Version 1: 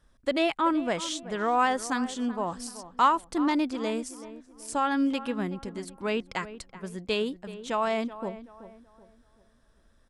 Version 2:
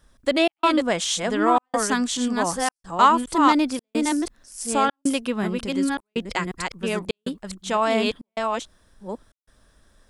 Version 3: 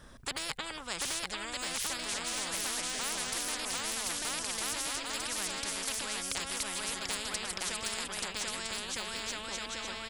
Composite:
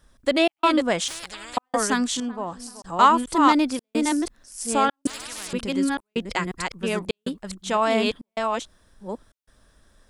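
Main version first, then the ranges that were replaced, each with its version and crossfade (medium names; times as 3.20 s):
2
1.08–1.57 s: from 3
2.20–2.82 s: from 1
5.07–5.53 s: from 3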